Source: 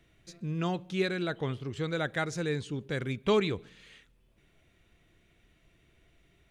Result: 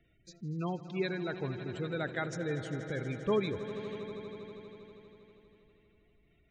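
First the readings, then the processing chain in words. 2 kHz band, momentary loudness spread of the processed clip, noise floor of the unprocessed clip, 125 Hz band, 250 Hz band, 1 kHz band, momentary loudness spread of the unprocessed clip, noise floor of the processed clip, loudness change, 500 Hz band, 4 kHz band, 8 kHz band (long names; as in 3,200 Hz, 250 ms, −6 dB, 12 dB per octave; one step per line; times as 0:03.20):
−4.0 dB, 16 LU, −67 dBFS, −3.5 dB, −3.0 dB, −4.0 dB, 8 LU, −68 dBFS, −4.5 dB, −3.0 dB, −7.0 dB, −6.0 dB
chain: gate on every frequency bin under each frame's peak −20 dB strong
echo that builds up and dies away 80 ms, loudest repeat 5, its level −16 dB
level −4 dB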